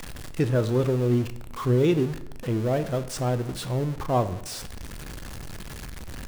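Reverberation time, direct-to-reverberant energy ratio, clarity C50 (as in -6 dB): 0.80 s, 11.0 dB, 14.0 dB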